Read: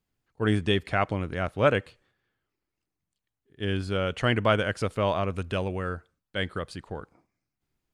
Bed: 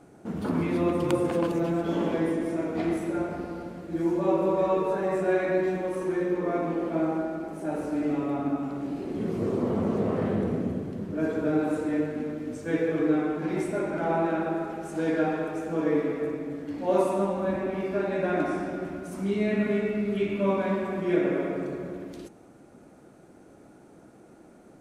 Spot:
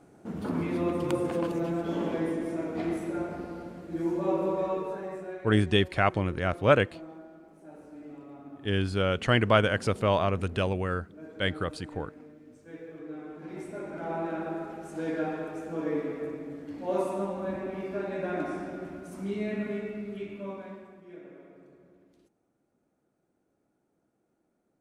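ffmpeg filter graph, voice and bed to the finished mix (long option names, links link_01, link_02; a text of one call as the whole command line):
ffmpeg -i stem1.wav -i stem2.wav -filter_complex "[0:a]adelay=5050,volume=1dB[link_01];[1:a]volume=9dB,afade=type=out:start_time=4.43:duration=0.98:silence=0.188365,afade=type=in:start_time=13.07:duration=1.44:silence=0.237137,afade=type=out:start_time=19.32:duration=1.69:silence=0.133352[link_02];[link_01][link_02]amix=inputs=2:normalize=0" out.wav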